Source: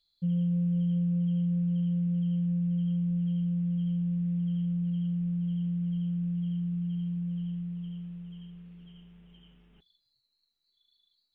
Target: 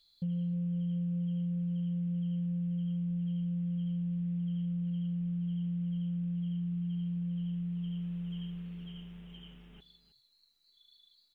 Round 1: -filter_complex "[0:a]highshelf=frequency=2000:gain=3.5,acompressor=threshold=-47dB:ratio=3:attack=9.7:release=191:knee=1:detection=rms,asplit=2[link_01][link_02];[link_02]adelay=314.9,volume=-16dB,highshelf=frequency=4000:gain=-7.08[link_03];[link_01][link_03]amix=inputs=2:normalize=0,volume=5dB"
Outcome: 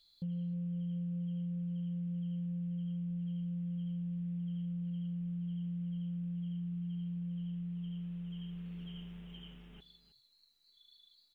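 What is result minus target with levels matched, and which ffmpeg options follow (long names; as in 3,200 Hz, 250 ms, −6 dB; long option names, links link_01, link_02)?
downward compressor: peak gain reduction +4.5 dB
-filter_complex "[0:a]highshelf=frequency=2000:gain=3.5,acompressor=threshold=-40.5dB:ratio=3:attack=9.7:release=191:knee=1:detection=rms,asplit=2[link_01][link_02];[link_02]adelay=314.9,volume=-16dB,highshelf=frequency=4000:gain=-7.08[link_03];[link_01][link_03]amix=inputs=2:normalize=0,volume=5dB"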